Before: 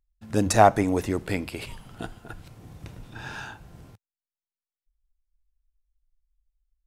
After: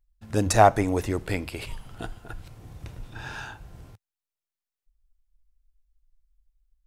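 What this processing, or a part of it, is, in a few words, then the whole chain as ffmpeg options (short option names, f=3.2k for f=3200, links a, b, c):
low shelf boost with a cut just above: -af "lowshelf=f=78:g=7.5,equalizer=f=200:t=o:w=1.1:g=-4.5"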